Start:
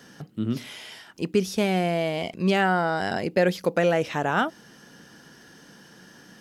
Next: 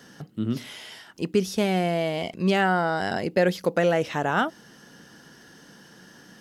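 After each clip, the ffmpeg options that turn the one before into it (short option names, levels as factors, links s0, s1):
-af "bandreject=f=2400:w=21"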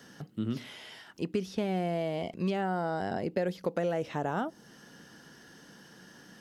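-filter_complex "[0:a]acrossover=split=1000|4400[s0][s1][s2];[s0]acompressor=threshold=0.0631:ratio=4[s3];[s1]acompressor=threshold=0.00794:ratio=4[s4];[s2]acompressor=threshold=0.00158:ratio=4[s5];[s3][s4][s5]amix=inputs=3:normalize=0,volume=0.668"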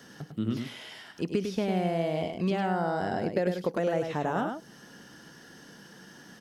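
-af "aecho=1:1:101:0.501,volume=1.26"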